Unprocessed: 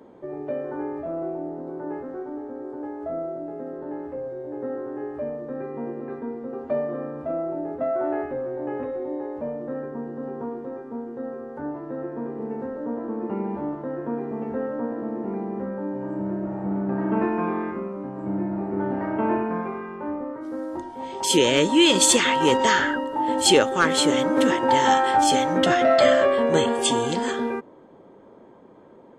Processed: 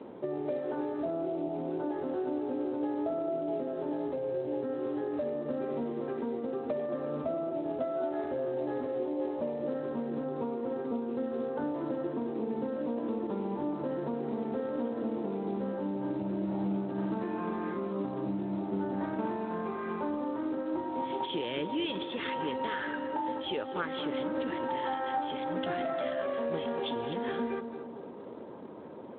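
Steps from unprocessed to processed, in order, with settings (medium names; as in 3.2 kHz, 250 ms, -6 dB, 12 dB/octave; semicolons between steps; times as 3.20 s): compression 12:1, threshold -34 dBFS, peak gain reduction 21.5 dB; 21.91–22.72 s: distance through air 53 m; on a send: tape echo 222 ms, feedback 64%, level -7 dB, low-pass 1.1 kHz; on the sum: trim +3 dB; Speex 15 kbps 8 kHz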